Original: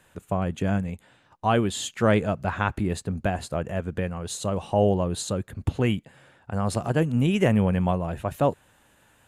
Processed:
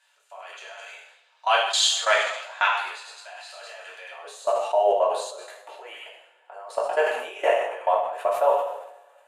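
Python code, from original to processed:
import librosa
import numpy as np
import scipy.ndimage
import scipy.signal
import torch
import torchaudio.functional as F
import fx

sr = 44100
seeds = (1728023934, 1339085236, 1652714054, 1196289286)

y = scipy.signal.sosfilt(scipy.signal.butter(6, 630.0, 'highpass', fs=sr, output='sos'), x)
y = fx.peak_eq(y, sr, hz=fx.steps((0.0, 4600.0), (4.11, 410.0)), db=13.5, octaves=1.8)
y = fx.echo_wet_highpass(y, sr, ms=102, feedback_pct=34, hz=1900.0, wet_db=-7.5)
y = fx.level_steps(y, sr, step_db=23)
y = fx.high_shelf(y, sr, hz=6200.0, db=-6.0)
y = fx.rev_double_slope(y, sr, seeds[0], early_s=0.5, late_s=1.8, knee_db=-18, drr_db=-4.5)
y = fx.sustainer(y, sr, db_per_s=67.0)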